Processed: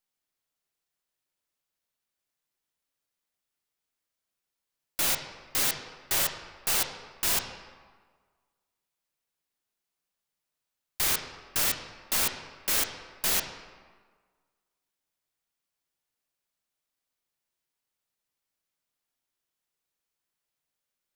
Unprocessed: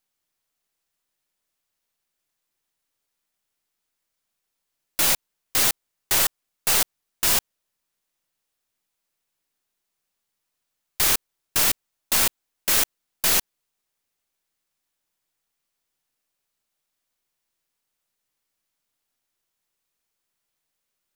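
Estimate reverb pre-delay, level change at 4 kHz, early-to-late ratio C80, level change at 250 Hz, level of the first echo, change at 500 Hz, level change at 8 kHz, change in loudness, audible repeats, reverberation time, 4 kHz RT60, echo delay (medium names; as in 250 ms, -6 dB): 9 ms, -5.5 dB, 9.0 dB, -5.5 dB, no echo, -5.0 dB, -6.5 dB, -6.5 dB, no echo, 1.5 s, 1.0 s, no echo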